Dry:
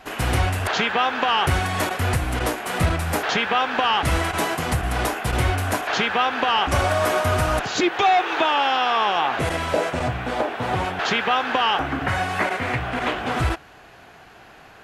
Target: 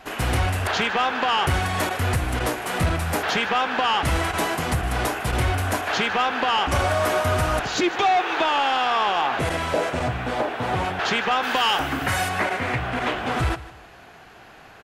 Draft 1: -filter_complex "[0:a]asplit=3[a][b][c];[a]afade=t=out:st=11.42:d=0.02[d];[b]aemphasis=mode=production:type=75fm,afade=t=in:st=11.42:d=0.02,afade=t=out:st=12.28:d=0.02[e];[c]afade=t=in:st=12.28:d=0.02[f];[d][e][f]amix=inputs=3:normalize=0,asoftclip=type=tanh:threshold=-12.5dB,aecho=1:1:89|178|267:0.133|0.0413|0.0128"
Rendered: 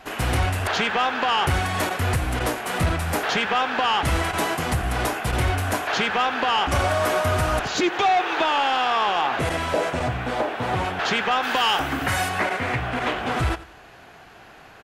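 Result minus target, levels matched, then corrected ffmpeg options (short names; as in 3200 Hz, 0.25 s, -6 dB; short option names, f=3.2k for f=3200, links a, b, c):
echo 64 ms early
-filter_complex "[0:a]asplit=3[a][b][c];[a]afade=t=out:st=11.42:d=0.02[d];[b]aemphasis=mode=production:type=75fm,afade=t=in:st=11.42:d=0.02,afade=t=out:st=12.28:d=0.02[e];[c]afade=t=in:st=12.28:d=0.02[f];[d][e][f]amix=inputs=3:normalize=0,asoftclip=type=tanh:threshold=-12.5dB,aecho=1:1:153|306|459:0.133|0.0413|0.0128"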